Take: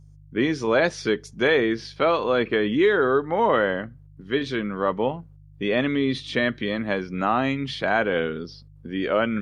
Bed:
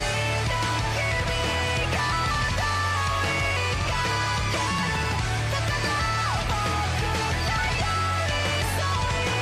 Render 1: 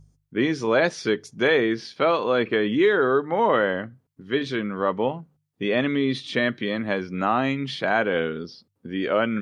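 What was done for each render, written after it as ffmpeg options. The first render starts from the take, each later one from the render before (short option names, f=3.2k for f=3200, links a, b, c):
-af "bandreject=f=50:t=h:w=4,bandreject=f=100:t=h:w=4,bandreject=f=150:t=h:w=4"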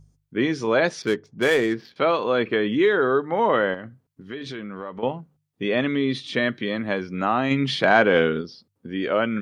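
-filter_complex "[0:a]asettb=1/sr,asplit=3[a][b][c];[a]atrim=end=1.024[d];[b]atrim=start=1.02:end=1.96,asetpts=PTS-STARTPTS,afade=t=in:d=0.004:c=qsin,afade=t=out:st=0.936:d=0.004:c=qsin,adynamicsmooth=sensitivity=4:basefreq=1.8k[e];[c]atrim=start=1.956[f];[d][e]acrossfade=d=0.004:c1=hsin:c2=qsin[g];[g][f]acrossfade=d=0.004:c1=qsin:c2=hsin,asettb=1/sr,asplit=3[h][i][j];[h]atrim=end=3.744[k];[i]atrim=start=3.74:end=5.03,asetpts=PTS-STARTPTS,afade=t=in:d=0.004:c=qsin,afade=t=out:st=1.286:d=0.004:c=qsin,acompressor=threshold=-30dB:ratio=5:attack=3.2:release=140:knee=1:detection=peak[l];[j]atrim=start=5.026[m];[k][l]acrossfade=d=0.004:c1=hsin:c2=qsin[n];[n][m]acrossfade=d=0.004:c1=qsin:c2=hsin,asplit=3[o][p][q];[o]afade=t=out:st=7.5:d=0.02[r];[p]acontrast=49,afade=t=in:st=7.5:d=0.02,afade=t=out:st=8.4:d=0.02[s];[q]afade=t=in:st=8.4:d=0.02[t];[r][s][t]amix=inputs=3:normalize=0"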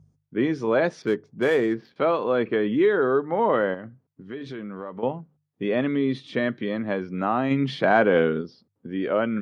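-af "highpass=93,highshelf=f=2.1k:g=-12"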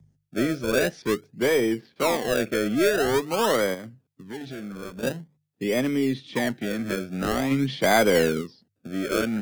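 -filter_complex "[0:a]aeval=exprs='0.501*(cos(1*acos(clip(val(0)/0.501,-1,1)))-cos(1*PI/2))+0.0126*(cos(4*acos(clip(val(0)/0.501,-1,1)))-cos(4*PI/2))':c=same,acrossover=split=100|350|1200[a][b][c][d];[c]acrusher=samples=31:mix=1:aa=0.000001:lfo=1:lforange=31:lforate=0.47[e];[a][b][e][d]amix=inputs=4:normalize=0"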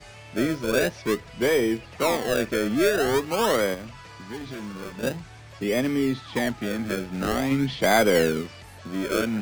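-filter_complex "[1:a]volume=-19.5dB[a];[0:a][a]amix=inputs=2:normalize=0"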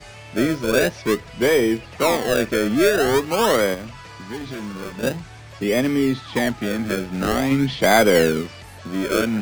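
-af "volume=4.5dB"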